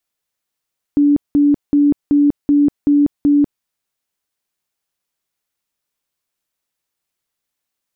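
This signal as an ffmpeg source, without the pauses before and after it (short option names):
-f lavfi -i "aevalsrc='0.376*sin(2*PI*289*mod(t,0.38))*lt(mod(t,0.38),56/289)':d=2.66:s=44100"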